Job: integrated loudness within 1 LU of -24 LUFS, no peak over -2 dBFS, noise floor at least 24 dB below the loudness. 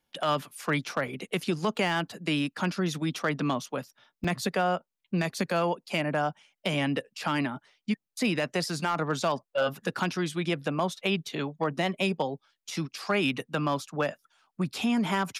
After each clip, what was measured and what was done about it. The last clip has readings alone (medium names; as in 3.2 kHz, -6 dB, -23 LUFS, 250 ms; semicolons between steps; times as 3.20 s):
clipped samples 0.2%; clipping level -18.0 dBFS; dropouts 2; longest dropout 4.7 ms; loudness -30.0 LUFS; peak level -18.0 dBFS; loudness target -24.0 LUFS
-> clip repair -18 dBFS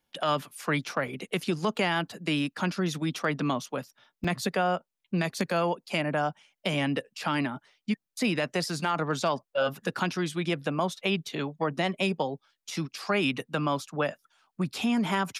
clipped samples 0.0%; dropouts 2; longest dropout 4.7 ms
-> interpolate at 1.08/4.24 s, 4.7 ms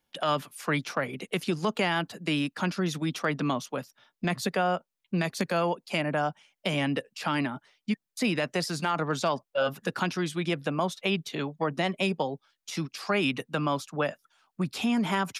dropouts 0; loudness -29.5 LUFS; peak level -12.0 dBFS; loudness target -24.0 LUFS
-> trim +5.5 dB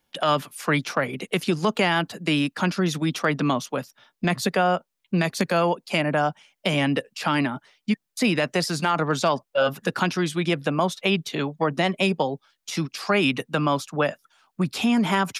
loudness -24.0 LUFS; peak level -6.5 dBFS; noise floor -79 dBFS